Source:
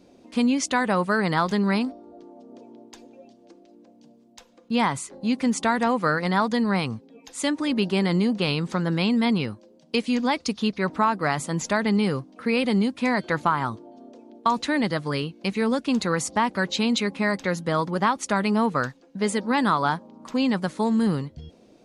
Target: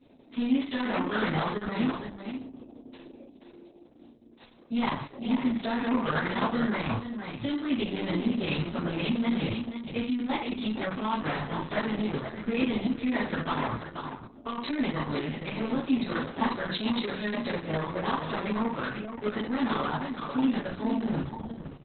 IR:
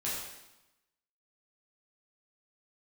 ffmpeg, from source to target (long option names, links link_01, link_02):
-filter_complex "[0:a]aresample=16000,asoftclip=type=tanh:threshold=-20.5dB,aresample=44100,aecho=1:1:478:0.422[link_01];[1:a]atrim=start_sample=2205,asetrate=88200,aresample=44100[link_02];[link_01][link_02]afir=irnorm=-1:irlink=0,volume=-1dB" -ar 48000 -c:a libopus -b:a 6k